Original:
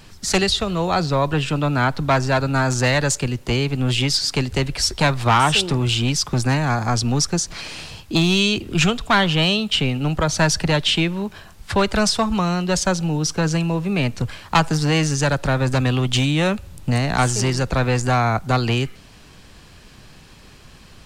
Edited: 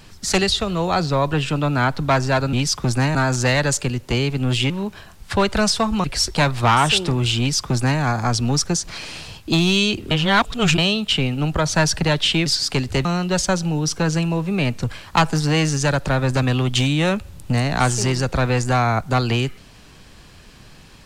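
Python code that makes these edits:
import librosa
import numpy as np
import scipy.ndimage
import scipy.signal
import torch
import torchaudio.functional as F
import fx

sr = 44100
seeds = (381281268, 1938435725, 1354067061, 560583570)

y = fx.edit(x, sr, fx.swap(start_s=4.08, length_s=0.59, other_s=11.09, other_length_s=1.34),
    fx.duplicate(start_s=6.02, length_s=0.62, to_s=2.53),
    fx.reverse_span(start_s=8.74, length_s=0.67), tone=tone)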